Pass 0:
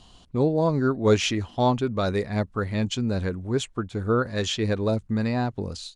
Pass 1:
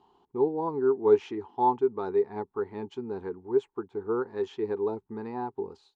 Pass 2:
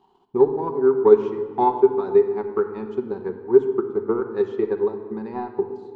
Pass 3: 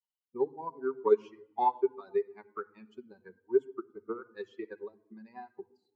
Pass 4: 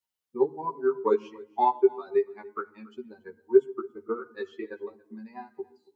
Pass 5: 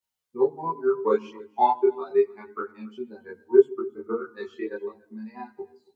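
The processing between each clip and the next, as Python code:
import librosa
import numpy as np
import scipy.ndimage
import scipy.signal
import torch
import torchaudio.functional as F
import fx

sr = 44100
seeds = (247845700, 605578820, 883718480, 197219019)

y1 = fx.double_bandpass(x, sr, hz=590.0, octaves=1.1)
y1 = y1 * librosa.db_to_amplitude(4.0)
y2 = fx.transient(y1, sr, attack_db=9, sustain_db=-8)
y2 = fx.room_shoebox(y2, sr, seeds[0], volume_m3=2600.0, walls='mixed', distance_m=1.1)
y2 = y2 * librosa.db_to_amplitude(1.0)
y3 = fx.bin_expand(y2, sr, power=2.0)
y3 = fx.highpass(y3, sr, hz=720.0, slope=6)
y3 = y3 * librosa.db_to_amplitude(-3.0)
y4 = fx.doubler(y3, sr, ms=13.0, db=-2.5)
y4 = y4 + 10.0 ** (-23.5 / 20.0) * np.pad(y4, (int(281 * sr / 1000.0), 0))[:len(y4)]
y4 = y4 * librosa.db_to_amplitude(4.0)
y5 = fx.chorus_voices(y4, sr, voices=2, hz=0.74, base_ms=24, depth_ms=1.0, mix_pct=55)
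y5 = y5 * librosa.db_to_amplitude(6.0)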